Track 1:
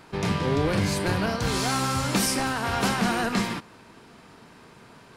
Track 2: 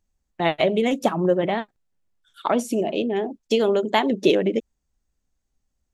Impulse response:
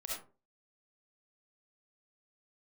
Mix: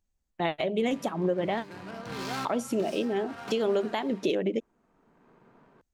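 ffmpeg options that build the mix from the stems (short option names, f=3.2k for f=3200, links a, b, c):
-filter_complex "[0:a]highpass=160,adynamicsmooth=sensitivity=5.5:basefreq=1.2k,adelay=650,volume=-7dB,asplit=2[a][b];[b]volume=-16.5dB[c];[1:a]volume=-5dB,asplit=2[d][e];[e]apad=whole_len=256330[f];[a][f]sidechaincompress=threshold=-41dB:ratio=8:attack=5.2:release=565[g];[2:a]atrim=start_sample=2205[h];[c][h]afir=irnorm=-1:irlink=0[i];[g][d][i]amix=inputs=3:normalize=0,alimiter=limit=-17dB:level=0:latency=1:release=210"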